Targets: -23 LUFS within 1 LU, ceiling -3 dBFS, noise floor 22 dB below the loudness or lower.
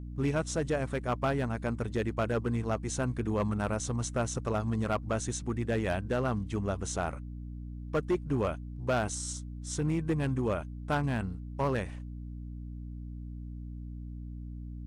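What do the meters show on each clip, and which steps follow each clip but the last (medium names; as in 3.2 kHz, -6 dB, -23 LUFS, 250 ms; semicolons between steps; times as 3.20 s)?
clipped samples 1.1%; clipping level -22.5 dBFS; hum 60 Hz; highest harmonic 300 Hz; hum level -38 dBFS; loudness -32.5 LUFS; peak level -22.5 dBFS; loudness target -23.0 LUFS
-> clip repair -22.5 dBFS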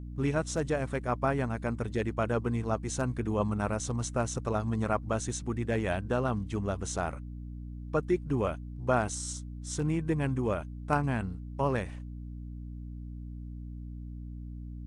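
clipped samples 0.0%; hum 60 Hz; highest harmonic 300 Hz; hum level -38 dBFS
-> de-hum 60 Hz, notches 5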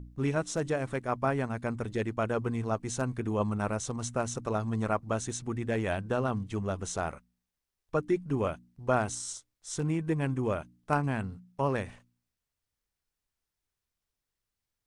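hum not found; loudness -32.0 LUFS; peak level -13.0 dBFS; loudness target -23.0 LUFS
-> trim +9 dB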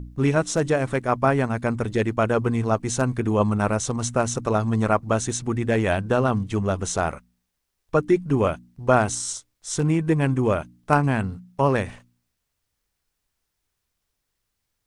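loudness -23.0 LUFS; peak level -4.0 dBFS; noise floor -79 dBFS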